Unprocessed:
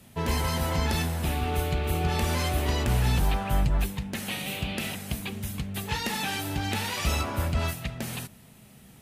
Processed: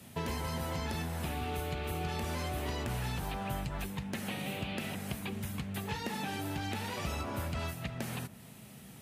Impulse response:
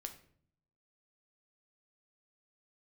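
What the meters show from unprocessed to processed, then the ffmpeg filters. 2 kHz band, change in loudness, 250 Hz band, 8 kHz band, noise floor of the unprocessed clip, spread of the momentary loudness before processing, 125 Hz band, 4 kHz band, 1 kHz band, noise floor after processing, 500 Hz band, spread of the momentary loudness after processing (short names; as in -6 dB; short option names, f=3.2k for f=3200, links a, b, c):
-8.0 dB, -8.5 dB, -6.0 dB, -9.5 dB, -52 dBFS, 8 LU, -9.5 dB, -9.0 dB, -7.0 dB, -52 dBFS, -6.5 dB, 3 LU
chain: -filter_complex "[0:a]highpass=78,acrossover=split=730|2100[a][b][c];[a]acompressor=threshold=-37dB:ratio=4[d];[b]acompressor=threshold=-46dB:ratio=4[e];[c]acompressor=threshold=-48dB:ratio=4[f];[d][e][f]amix=inputs=3:normalize=0,volume=1dB"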